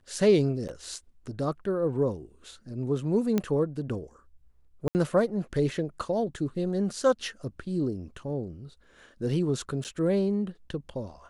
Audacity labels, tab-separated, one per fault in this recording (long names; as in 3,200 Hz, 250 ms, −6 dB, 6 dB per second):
0.680000	0.690000	drop-out 8.2 ms
3.380000	3.380000	click −13 dBFS
4.880000	4.950000	drop-out 69 ms
9.840000	9.850000	drop-out 8.5 ms